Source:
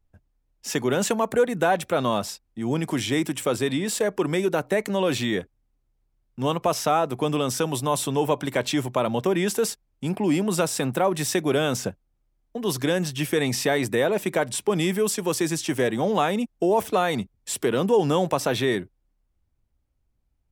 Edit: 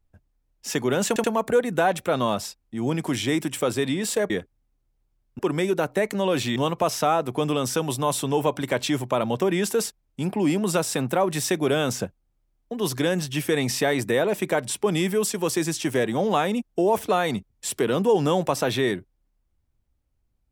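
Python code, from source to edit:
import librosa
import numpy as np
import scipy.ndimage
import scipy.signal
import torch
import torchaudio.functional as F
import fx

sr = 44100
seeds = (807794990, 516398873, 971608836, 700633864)

y = fx.edit(x, sr, fx.stutter(start_s=1.08, slice_s=0.08, count=3),
    fx.move(start_s=5.31, length_s=1.09, to_s=4.14), tone=tone)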